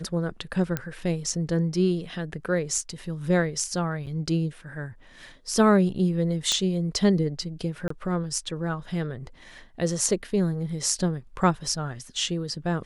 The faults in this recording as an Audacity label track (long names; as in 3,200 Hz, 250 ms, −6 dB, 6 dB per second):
0.770000	0.770000	click −12 dBFS
4.060000	4.070000	drop-out 7.9 ms
6.520000	6.520000	click −10 dBFS
7.880000	7.900000	drop-out 24 ms